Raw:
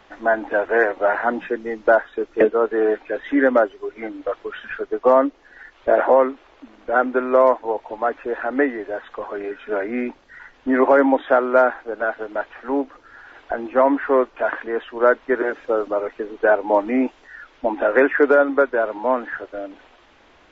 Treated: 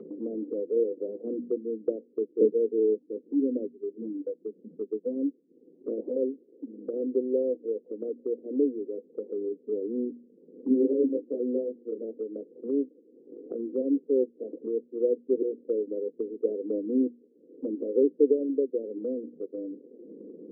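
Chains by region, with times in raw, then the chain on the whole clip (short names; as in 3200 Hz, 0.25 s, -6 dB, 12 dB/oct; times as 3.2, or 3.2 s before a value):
2.98–6.16 comb 1 ms, depth 36% + LFO notch saw up 2.9 Hz 320–2700 Hz
10.68–11.99 low shelf 330 Hz +8 dB + detuned doubles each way 17 cents
whole clip: Chebyshev band-pass 170–500 Hz, order 5; notches 60/120/180/240 Hz; upward compressor, threshold -23 dBFS; gain -4.5 dB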